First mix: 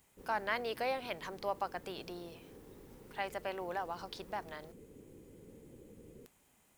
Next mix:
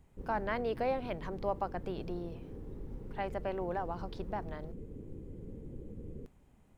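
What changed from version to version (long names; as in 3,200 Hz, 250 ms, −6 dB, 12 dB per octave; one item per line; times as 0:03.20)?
master: add spectral tilt −4 dB per octave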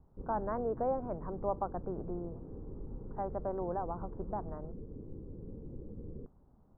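master: add Butterworth low-pass 1,300 Hz 36 dB per octave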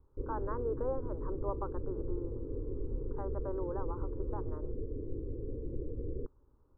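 background +9.5 dB
master: add phaser with its sweep stopped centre 710 Hz, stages 6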